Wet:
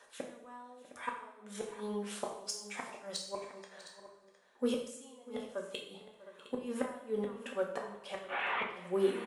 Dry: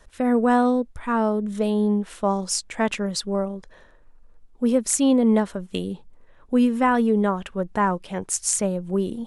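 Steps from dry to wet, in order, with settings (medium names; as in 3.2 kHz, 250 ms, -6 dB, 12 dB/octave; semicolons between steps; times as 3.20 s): 8.25–8.72 s: one-bit delta coder 16 kbps, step -25.5 dBFS; high-pass 550 Hz 12 dB/octave; inverted gate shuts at -20 dBFS, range -27 dB; in parallel at -7 dB: hard clipper -26 dBFS, distortion -15 dB; on the sum: phaser 0.44 Hz, delay 2 ms, feedback 33%; on a send: multi-tap echo 646/711 ms -18/-14.5 dB; on the sum: two-slope reverb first 0.61 s, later 2.1 s, from -19 dB, DRR -0.5 dB; trim -8 dB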